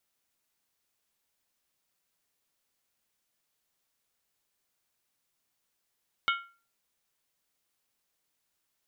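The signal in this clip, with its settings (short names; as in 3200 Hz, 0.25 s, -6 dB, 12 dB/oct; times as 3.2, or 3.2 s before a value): skin hit, lowest mode 1380 Hz, decay 0.37 s, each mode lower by 3 dB, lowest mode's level -22.5 dB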